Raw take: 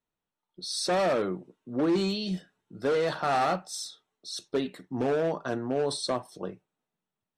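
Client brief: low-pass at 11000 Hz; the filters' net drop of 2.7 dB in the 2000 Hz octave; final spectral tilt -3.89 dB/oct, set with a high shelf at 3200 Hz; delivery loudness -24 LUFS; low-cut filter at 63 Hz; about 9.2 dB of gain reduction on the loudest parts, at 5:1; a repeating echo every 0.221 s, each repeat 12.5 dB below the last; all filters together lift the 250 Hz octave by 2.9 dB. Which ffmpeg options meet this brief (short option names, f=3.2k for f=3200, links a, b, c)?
-af "highpass=63,lowpass=11k,equalizer=f=250:t=o:g=4,equalizer=f=2k:t=o:g=-5,highshelf=f=3.2k:g=4,acompressor=threshold=-31dB:ratio=5,aecho=1:1:221|442|663:0.237|0.0569|0.0137,volume=11dB"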